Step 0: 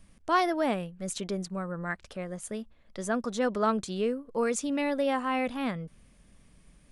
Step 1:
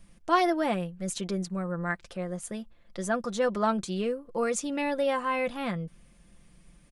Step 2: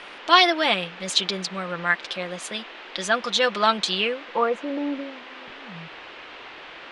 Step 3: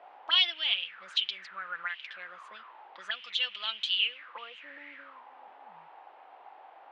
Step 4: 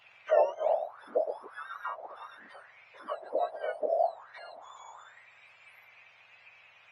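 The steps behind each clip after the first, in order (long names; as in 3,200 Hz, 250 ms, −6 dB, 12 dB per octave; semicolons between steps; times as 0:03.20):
comb filter 5.8 ms, depth 50%
low-pass filter sweep 3,600 Hz → 110 Hz, 0:03.94–0:05.30; spectral tilt +4 dB per octave; noise in a band 280–3,100 Hz −48 dBFS; level +6.5 dB
envelope filter 630–3,000 Hz, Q 7.2, up, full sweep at −21 dBFS; level +1.5 dB
frequency axis turned over on the octave scale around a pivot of 1,400 Hz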